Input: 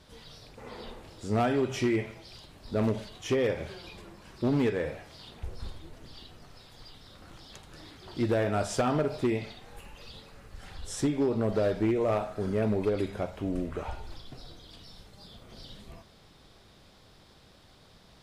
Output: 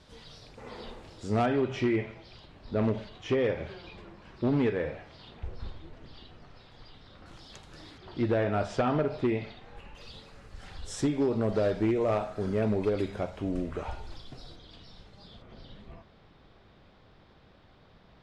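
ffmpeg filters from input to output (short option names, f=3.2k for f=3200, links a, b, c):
-af "asetnsamples=n=441:p=0,asendcmd='1.46 lowpass f 3500;7.26 lowpass f 8100;7.98 lowpass f 3500;9.95 lowpass f 8000;14.56 lowpass f 4300;15.42 lowpass f 2600',lowpass=7.8k"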